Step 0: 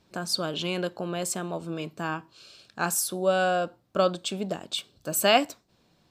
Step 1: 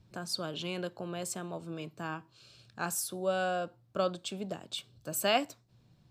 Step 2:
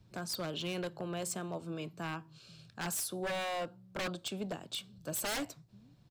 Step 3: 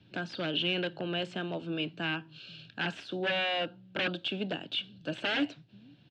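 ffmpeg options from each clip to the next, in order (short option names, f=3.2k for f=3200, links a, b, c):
-filter_complex "[0:a]equalizer=f=120:t=o:w=0.27:g=12.5,acrossover=split=200|1700[a][b][c];[a]acompressor=mode=upward:threshold=-45dB:ratio=2.5[d];[d][b][c]amix=inputs=3:normalize=0,volume=-7.5dB"
-filter_complex "[0:a]acrossover=split=140[a][b];[a]aecho=1:1:490:0.631[c];[b]aeval=exprs='0.0299*(abs(mod(val(0)/0.0299+3,4)-2)-1)':c=same[d];[c][d]amix=inputs=2:normalize=0"
-filter_complex "[0:a]acrossover=split=2800[a][b];[b]acompressor=threshold=-47dB:ratio=4:attack=1:release=60[c];[a][c]amix=inputs=2:normalize=0,highpass=120,equalizer=f=290:t=q:w=4:g=7,equalizer=f=1.1k:t=q:w=4:g=-8,equalizer=f=1.6k:t=q:w=4:g=8,equalizer=f=2.8k:t=q:w=4:g=6,lowpass=f=3.6k:w=0.5412,lowpass=f=3.6k:w=1.3066,aexciter=amount=2.3:drive=7:freq=2.7k,volume=3.5dB"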